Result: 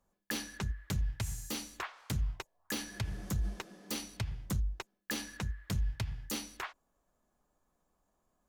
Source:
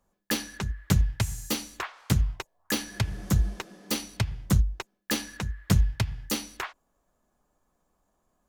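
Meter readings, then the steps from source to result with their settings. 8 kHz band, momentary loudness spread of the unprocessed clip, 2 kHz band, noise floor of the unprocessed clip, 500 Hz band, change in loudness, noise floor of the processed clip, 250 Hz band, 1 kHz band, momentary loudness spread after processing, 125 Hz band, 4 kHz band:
−7.5 dB, 12 LU, −7.0 dB, −75 dBFS, −9.5 dB, −9.5 dB, −79 dBFS, −10.5 dB, −7.5 dB, 7 LU, −10.5 dB, −8.0 dB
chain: brickwall limiter −21 dBFS, peak gain reduction 11 dB
level −4.5 dB

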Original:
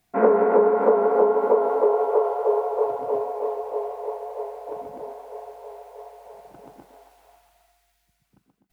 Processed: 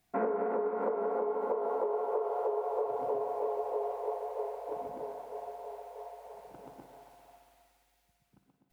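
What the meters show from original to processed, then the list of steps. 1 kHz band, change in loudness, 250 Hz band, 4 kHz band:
−9.5 dB, −12.5 dB, −11.5 dB, can't be measured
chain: downward compressor 12 to 1, threshold −24 dBFS, peak gain reduction 13 dB
spring reverb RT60 2.6 s, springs 57 ms, chirp 75 ms, DRR 8.5 dB
level −4.5 dB

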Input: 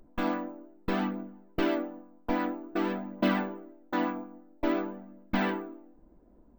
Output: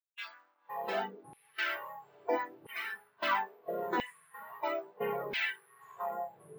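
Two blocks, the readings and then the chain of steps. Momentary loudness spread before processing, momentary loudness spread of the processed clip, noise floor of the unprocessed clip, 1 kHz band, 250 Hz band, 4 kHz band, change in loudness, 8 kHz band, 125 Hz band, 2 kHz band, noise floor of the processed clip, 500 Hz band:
13 LU, 14 LU, −59 dBFS, −0.5 dB, −17.0 dB, +1.5 dB, −4.5 dB, can't be measured, −15.0 dB, +1.5 dB, −71 dBFS, −3.0 dB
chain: dead-zone distortion −52 dBFS
feedback delay with all-pass diffusion 536 ms, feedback 54%, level −14 dB
delay with pitch and tempo change per echo 444 ms, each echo −6 semitones, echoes 3, each echo −6 dB
noise reduction from a noise print of the clip's start 20 dB
auto-filter high-pass saw down 0.75 Hz 320–2,600 Hz

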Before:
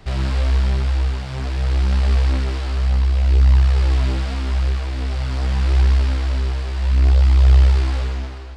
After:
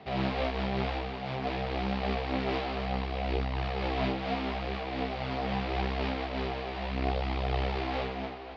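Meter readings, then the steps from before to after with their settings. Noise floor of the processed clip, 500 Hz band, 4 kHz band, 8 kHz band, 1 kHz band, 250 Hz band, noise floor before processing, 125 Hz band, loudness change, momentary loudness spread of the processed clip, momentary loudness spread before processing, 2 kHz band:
−38 dBFS, +0.5 dB, −5.5 dB, can't be measured, +1.0 dB, −2.5 dB, −28 dBFS, −19.0 dB, −14.0 dB, 4 LU, 9 LU, −3.5 dB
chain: in parallel at −3 dB: brickwall limiter −13.5 dBFS, peak gain reduction 8.5 dB
on the sum: loudspeaker in its box 170–4,100 Hz, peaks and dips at 210 Hz +6 dB, 460 Hz +5 dB, 730 Hz +10 dB, 1,500 Hz −4 dB, 2,300 Hz +3 dB
amplitude modulation by smooth noise, depth 55%
level −5 dB

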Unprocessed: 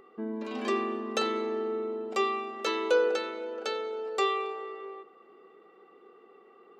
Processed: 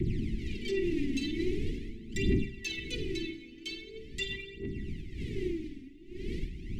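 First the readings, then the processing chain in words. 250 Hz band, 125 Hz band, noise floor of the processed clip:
+3.0 dB, can't be measured, −49 dBFS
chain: wind on the microphone 530 Hz −30 dBFS
Chebyshev band-stop filter 380–2,000 Hz, order 5
brickwall limiter −24 dBFS, peak gain reduction 11 dB
phase shifter 0.43 Hz, delay 3.8 ms, feedback 74%
on a send: flutter between parallel walls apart 8.5 metres, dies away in 0.24 s
on the sum: level −3.5 dB

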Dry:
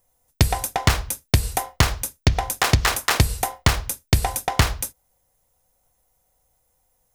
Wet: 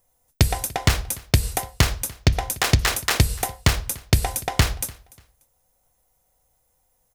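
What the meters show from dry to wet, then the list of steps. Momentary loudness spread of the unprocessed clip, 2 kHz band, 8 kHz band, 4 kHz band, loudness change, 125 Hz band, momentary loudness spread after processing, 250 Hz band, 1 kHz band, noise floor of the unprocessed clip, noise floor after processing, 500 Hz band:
5 LU, −1.5 dB, 0.0 dB, 0.0 dB, −0.5 dB, 0.0 dB, 5 LU, 0.0 dB, −3.5 dB, −69 dBFS, −68 dBFS, −1.0 dB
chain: dynamic equaliser 1,000 Hz, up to −5 dB, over −35 dBFS, Q 1.2
repeating echo 293 ms, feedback 26%, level −23 dB

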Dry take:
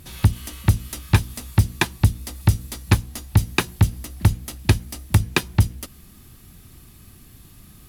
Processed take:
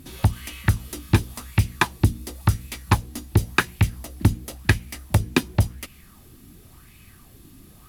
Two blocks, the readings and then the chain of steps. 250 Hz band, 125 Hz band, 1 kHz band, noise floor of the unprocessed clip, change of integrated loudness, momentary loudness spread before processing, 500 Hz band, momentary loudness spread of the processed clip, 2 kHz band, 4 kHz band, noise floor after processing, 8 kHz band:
0.0 dB, −2.5 dB, +2.0 dB, −48 dBFS, −2.0 dB, 4 LU, +0.5 dB, 5 LU, +1.5 dB, −2.5 dB, −50 dBFS, −3.0 dB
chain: auto-filter bell 0.93 Hz 260–2,500 Hz +12 dB
level −3 dB

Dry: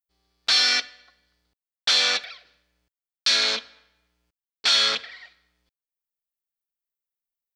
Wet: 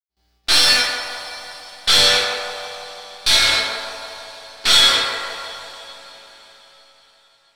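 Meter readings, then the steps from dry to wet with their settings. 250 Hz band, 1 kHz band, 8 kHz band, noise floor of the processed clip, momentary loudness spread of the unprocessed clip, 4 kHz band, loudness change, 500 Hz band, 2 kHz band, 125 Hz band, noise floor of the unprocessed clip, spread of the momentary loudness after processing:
+9.5 dB, +10.0 dB, +8.5 dB, −63 dBFS, 10 LU, +7.0 dB, +5.5 dB, +11.0 dB, +7.0 dB, can't be measured, below −85 dBFS, 21 LU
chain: stylus tracing distortion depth 0.025 ms
noise gate with hold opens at −60 dBFS
on a send: feedback echo with a band-pass in the loop 167 ms, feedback 75%, band-pass 760 Hz, level −3.5 dB
on the sum: coupled-rooms reverb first 0.57 s, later 4.9 s, from −21 dB, DRR −4.5 dB
level +1 dB

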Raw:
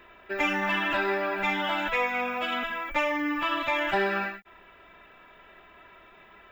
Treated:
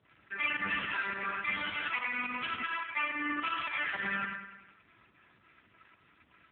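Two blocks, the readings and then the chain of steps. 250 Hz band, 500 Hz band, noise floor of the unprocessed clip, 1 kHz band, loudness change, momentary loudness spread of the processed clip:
−11.0 dB, −19.0 dB, −54 dBFS, −8.0 dB, −6.0 dB, 3 LU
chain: Bessel high-pass filter 220 Hz, order 8
flat-topped bell 520 Hz −15 dB
in parallel at −1 dB: brickwall limiter −24.5 dBFS, peak gain reduction 8 dB
on the sum: fake sidechain pumping 106 BPM, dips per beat 2, −15 dB, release 85 ms
dead-zone distortion −52 dBFS
background noise brown −52 dBFS
on a send: repeating echo 102 ms, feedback 54%, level −9 dB
on the sum: level −5 dB
AMR narrowband 5.9 kbit/s 8,000 Hz

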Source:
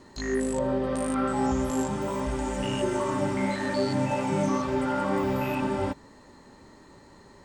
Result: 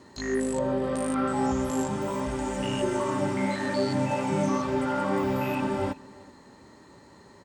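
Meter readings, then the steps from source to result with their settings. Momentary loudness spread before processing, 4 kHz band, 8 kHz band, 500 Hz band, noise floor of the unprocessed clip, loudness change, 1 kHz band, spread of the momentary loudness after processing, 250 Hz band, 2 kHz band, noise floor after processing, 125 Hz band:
4 LU, 0.0 dB, 0.0 dB, 0.0 dB, −53 dBFS, 0.0 dB, 0.0 dB, 4 LU, 0.0 dB, 0.0 dB, −53 dBFS, −0.5 dB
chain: high-pass filter 68 Hz
on a send: single-tap delay 371 ms −22.5 dB

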